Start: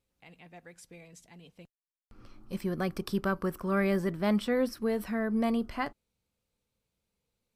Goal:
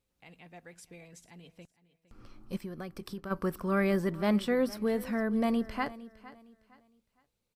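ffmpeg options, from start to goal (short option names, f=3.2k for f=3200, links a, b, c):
-filter_complex "[0:a]asplit=3[a][b][c];[a]afade=t=out:st=2.56:d=0.02[d];[b]acompressor=threshold=-38dB:ratio=6,afade=t=in:st=2.56:d=0.02,afade=t=out:st=3.3:d=0.02[e];[c]afade=t=in:st=3.3:d=0.02[f];[d][e][f]amix=inputs=3:normalize=0,aecho=1:1:460|920|1380:0.126|0.0378|0.0113"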